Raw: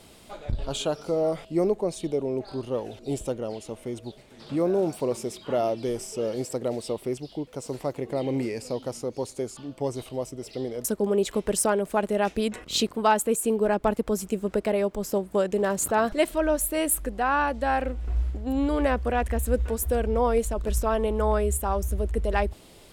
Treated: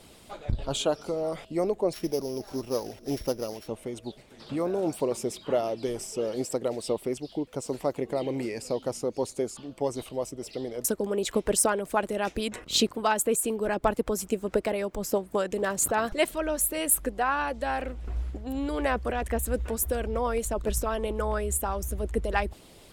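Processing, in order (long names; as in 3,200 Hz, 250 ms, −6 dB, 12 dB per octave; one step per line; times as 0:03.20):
0:01.93–0:03.68: samples sorted by size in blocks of 8 samples
harmonic and percussive parts rebalanced percussive +8 dB
level −6 dB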